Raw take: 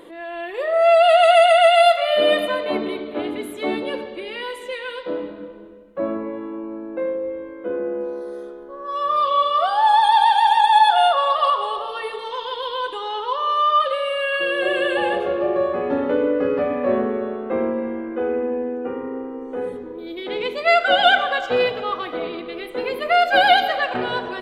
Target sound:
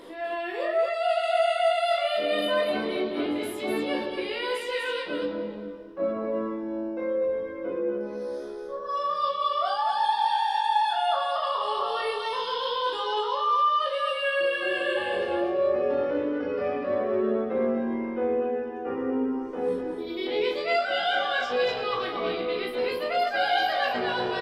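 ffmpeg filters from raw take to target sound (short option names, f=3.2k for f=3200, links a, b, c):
-af "equalizer=f=5.2k:t=o:w=0.31:g=14,areverse,acompressor=threshold=-26dB:ratio=4,areverse,aecho=1:1:37.9|244.9:0.631|0.631,flanger=delay=16:depth=7.8:speed=0.22,volume=1.5dB"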